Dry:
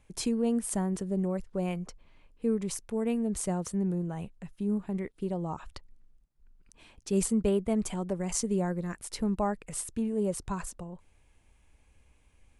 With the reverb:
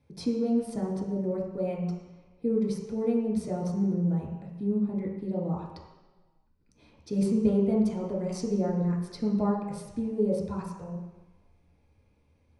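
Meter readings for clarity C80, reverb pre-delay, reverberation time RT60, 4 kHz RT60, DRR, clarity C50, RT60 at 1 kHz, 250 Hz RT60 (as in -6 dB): 5.5 dB, 3 ms, 1.1 s, 1.3 s, -5.0 dB, 2.5 dB, 1.2 s, 1.0 s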